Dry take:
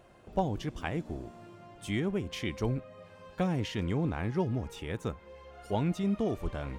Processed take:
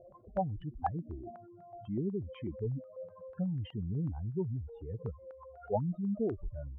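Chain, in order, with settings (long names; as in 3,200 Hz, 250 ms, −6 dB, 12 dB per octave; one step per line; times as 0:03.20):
expanding power law on the bin magnitudes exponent 3.4
low-pass on a step sequencer 8.1 Hz 550–1,700 Hz
level −4 dB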